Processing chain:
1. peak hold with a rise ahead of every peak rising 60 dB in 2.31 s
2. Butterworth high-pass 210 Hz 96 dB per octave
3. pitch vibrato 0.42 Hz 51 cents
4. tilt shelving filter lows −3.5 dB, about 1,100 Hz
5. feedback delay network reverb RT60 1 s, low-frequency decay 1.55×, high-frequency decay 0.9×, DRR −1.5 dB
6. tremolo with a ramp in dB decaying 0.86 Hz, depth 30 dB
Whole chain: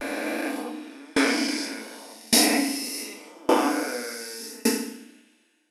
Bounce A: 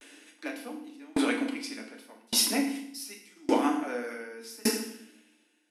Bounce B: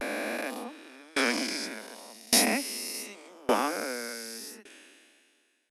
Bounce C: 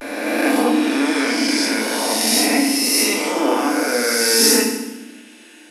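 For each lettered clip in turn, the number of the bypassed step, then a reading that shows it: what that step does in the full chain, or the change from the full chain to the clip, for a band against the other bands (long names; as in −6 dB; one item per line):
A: 1, change in integrated loudness −5.0 LU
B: 5, change in momentary loudness spread +3 LU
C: 6, change in momentary loudness spread −10 LU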